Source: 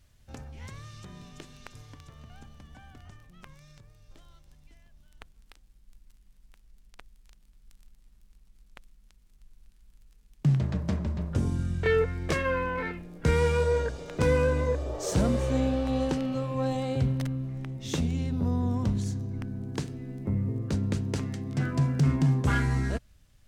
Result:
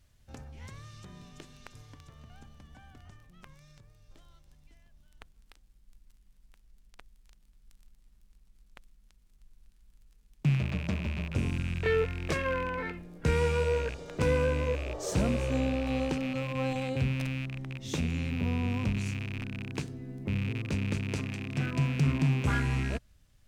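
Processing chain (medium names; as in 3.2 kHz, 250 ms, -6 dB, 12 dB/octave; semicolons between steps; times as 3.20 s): rattle on loud lows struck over -32 dBFS, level -26 dBFS; trim -3 dB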